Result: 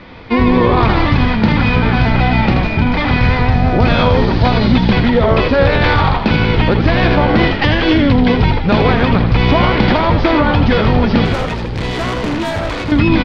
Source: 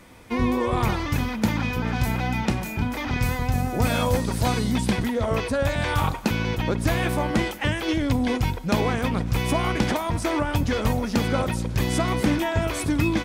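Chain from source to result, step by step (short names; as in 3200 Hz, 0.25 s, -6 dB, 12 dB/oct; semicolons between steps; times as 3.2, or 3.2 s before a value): tracing distortion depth 0.29 ms; steep low-pass 4700 Hz 48 dB/oct; 11.25–12.92 tube stage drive 29 dB, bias 0.6; frequency-shifting echo 80 ms, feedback 57%, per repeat -68 Hz, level -7.5 dB; maximiser +13.5 dB; gain -1 dB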